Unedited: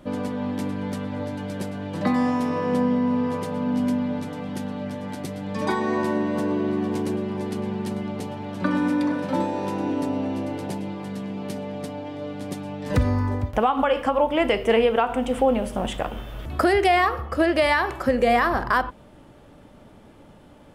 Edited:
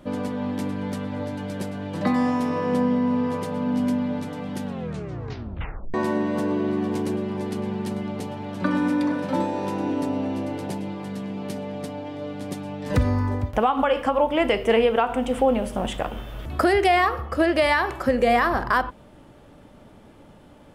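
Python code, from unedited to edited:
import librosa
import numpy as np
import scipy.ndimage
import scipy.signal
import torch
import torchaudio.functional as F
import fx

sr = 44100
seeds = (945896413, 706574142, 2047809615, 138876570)

y = fx.edit(x, sr, fx.tape_stop(start_s=4.64, length_s=1.3), tone=tone)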